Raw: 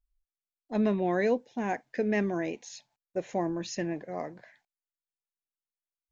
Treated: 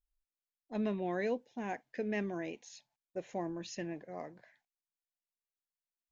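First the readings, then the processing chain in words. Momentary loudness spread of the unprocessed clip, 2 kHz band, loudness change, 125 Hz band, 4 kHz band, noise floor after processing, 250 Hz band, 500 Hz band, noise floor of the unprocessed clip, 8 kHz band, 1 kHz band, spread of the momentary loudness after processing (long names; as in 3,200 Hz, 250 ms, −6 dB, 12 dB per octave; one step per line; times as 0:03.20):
12 LU, −7.0 dB, −8.0 dB, −8.0 dB, −6.0 dB, below −85 dBFS, −8.0 dB, −8.0 dB, below −85 dBFS, can't be measured, −8.0 dB, 12 LU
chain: dynamic equaliser 3,000 Hz, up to +5 dB, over −54 dBFS, Q 2.4
level −8 dB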